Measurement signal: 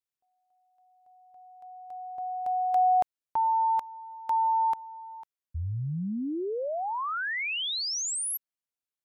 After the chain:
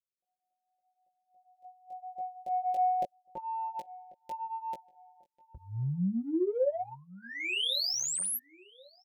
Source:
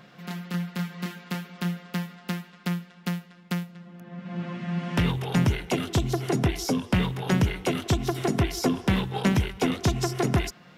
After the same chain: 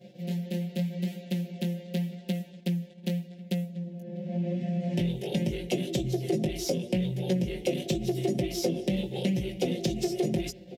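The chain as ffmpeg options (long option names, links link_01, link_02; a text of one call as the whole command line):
ffmpeg -i in.wav -filter_complex "[0:a]flanger=delay=15.5:depth=4:speed=0.84,asuperstop=centerf=1200:order=4:qfactor=0.55,agate=range=-9dB:threshold=-56dB:ratio=3:release=68:detection=rms,asplit=2[link_01][link_02];[link_02]adynamicsmooth=sensitivity=7.5:basefreq=1900,volume=-1.5dB[link_03];[link_01][link_03]amix=inputs=2:normalize=0,equalizer=frequency=560:width_type=o:width=0.28:gain=8,aecho=1:1:5.6:0.86,asplit=2[link_04][link_05];[link_05]adelay=1091,lowpass=frequency=1800:poles=1,volume=-23dB,asplit=2[link_06][link_07];[link_07]adelay=1091,lowpass=frequency=1800:poles=1,volume=0.33[link_08];[link_04][link_06][link_08]amix=inputs=3:normalize=0,acompressor=threshold=-25dB:ratio=4:attack=26:release=89:knee=6,lowshelf=frequency=97:gain=-11.5" out.wav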